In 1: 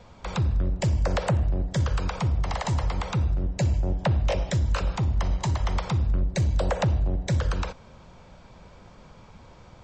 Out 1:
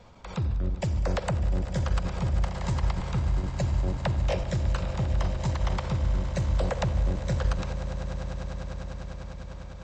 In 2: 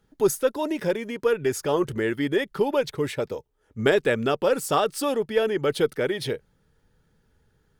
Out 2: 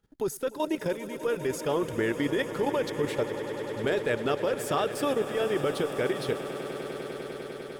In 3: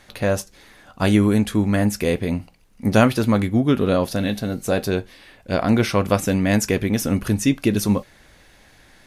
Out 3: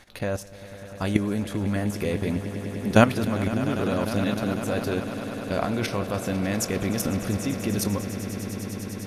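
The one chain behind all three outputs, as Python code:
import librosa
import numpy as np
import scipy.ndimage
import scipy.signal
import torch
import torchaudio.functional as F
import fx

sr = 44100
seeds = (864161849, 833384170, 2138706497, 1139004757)

p1 = fx.level_steps(x, sr, step_db=13)
y = p1 + fx.echo_swell(p1, sr, ms=100, loudest=8, wet_db=-16.5, dry=0)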